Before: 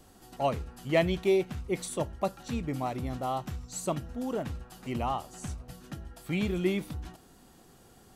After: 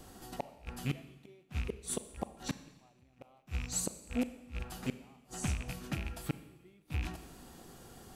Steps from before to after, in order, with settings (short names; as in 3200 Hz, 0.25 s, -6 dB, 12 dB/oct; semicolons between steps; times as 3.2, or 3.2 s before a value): rattling part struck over -41 dBFS, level -34 dBFS; flipped gate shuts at -26 dBFS, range -37 dB; Schroeder reverb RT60 1.1 s, combs from 29 ms, DRR 12.5 dB; gain +3.5 dB